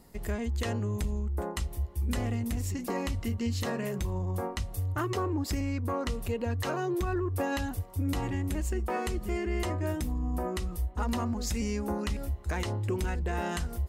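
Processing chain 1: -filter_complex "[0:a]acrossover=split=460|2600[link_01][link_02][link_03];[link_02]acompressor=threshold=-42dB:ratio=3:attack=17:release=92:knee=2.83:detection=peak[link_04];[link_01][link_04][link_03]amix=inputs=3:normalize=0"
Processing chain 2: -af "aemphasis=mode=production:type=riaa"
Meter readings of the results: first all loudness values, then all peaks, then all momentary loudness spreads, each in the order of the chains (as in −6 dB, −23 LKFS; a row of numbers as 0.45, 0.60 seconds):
−33.0, −31.5 LKFS; −18.5, −10.0 dBFS; 3, 6 LU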